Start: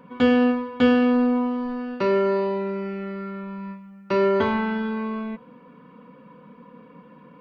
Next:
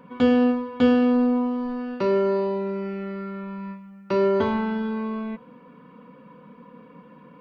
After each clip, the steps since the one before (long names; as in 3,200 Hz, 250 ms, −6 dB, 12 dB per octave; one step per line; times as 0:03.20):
dynamic equaliser 2,000 Hz, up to −6 dB, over −40 dBFS, Q 0.85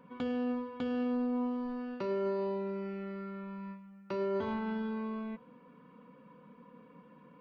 brickwall limiter −18.5 dBFS, peak gain reduction 11 dB
level −9 dB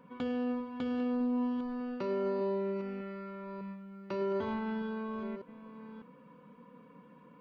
delay that plays each chunk backwards 602 ms, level −12 dB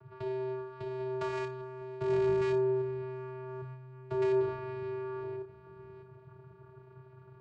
wrap-around overflow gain 27 dB
channel vocoder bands 8, square 129 Hz
flutter between parallel walls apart 4.9 metres, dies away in 0.22 s